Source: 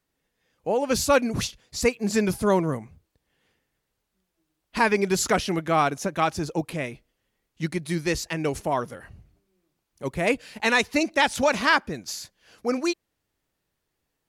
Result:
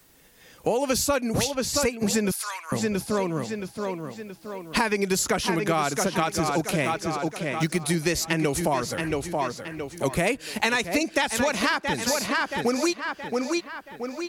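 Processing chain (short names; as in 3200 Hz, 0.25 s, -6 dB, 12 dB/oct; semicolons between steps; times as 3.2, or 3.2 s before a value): 6.85–7.81 G.711 law mismatch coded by A; high shelf 6200 Hz +8.5 dB; tape echo 0.674 s, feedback 38%, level -8 dB, low-pass 4400 Hz; compressor 6:1, threshold -27 dBFS, peak gain reduction 12.5 dB; 2.31–2.72 HPF 1200 Hz 24 dB/oct; three-band squash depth 40%; gain +6.5 dB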